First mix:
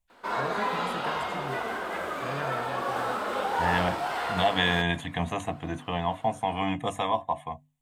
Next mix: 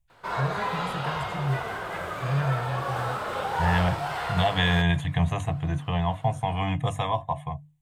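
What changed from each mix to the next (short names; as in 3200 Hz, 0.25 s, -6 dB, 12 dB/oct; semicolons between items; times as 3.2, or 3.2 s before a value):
master: add resonant low shelf 180 Hz +8.5 dB, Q 3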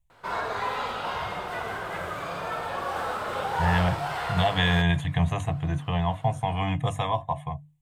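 first voice: muted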